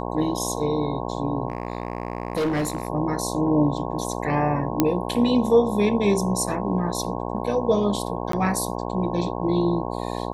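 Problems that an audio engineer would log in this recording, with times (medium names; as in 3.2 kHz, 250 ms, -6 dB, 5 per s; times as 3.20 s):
buzz 60 Hz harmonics 18 -29 dBFS
1.48–2.88 s: clipped -20 dBFS
4.80 s: pop -4 dBFS
8.32–8.33 s: dropout 13 ms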